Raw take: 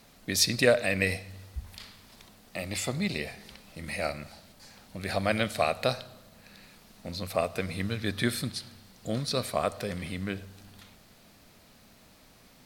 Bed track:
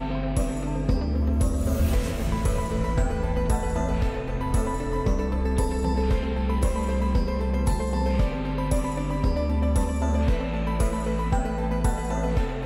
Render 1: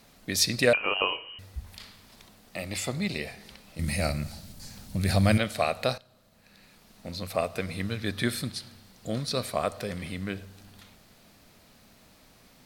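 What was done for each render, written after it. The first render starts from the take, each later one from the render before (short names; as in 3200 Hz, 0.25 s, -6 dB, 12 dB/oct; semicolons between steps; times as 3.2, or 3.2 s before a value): 0.73–1.39 inverted band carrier 3000 Hz; 3.79–5.38 tone controls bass +14 dB, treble +9 dB; 5.98–7.08 fade in, from -15.5 dB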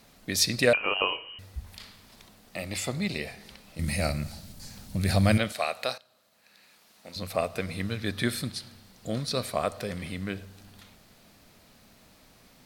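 5.52–7.16 HPF 750 Hz 6 dB/oct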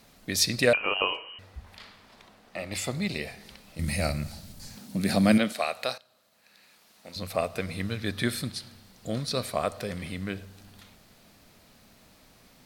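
1.14–2.72 overdrive pedal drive 11 dB, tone 1400 Hz, clips at -19 dBFS; 4.77–5.62 resonant high-pass 220 Hz, resonance Q 2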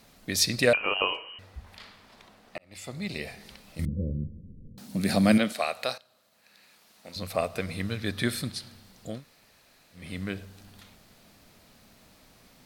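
2.58–3.34 fade in; 3.85–4.78 steep low-pass 510 Hz 96 dB/oct; 9.13–10.04 room tone, crossfade 0.24 s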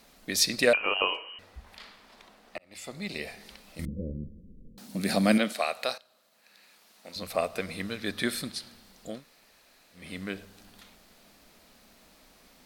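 bell 110 Hz -14 dB 0.86 oct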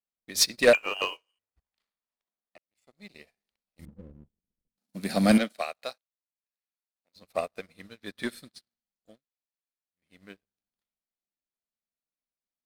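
sample leveller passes 2; upward expander 2.5:1, over -40 dBFS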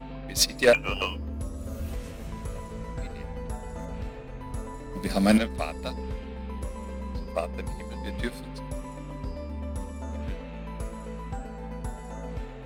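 add bed track -11.5 dB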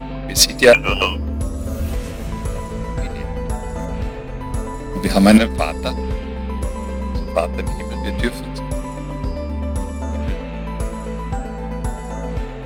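gain +11 dB; limiter -1 dBFS, peak gain reduction 2.5 dB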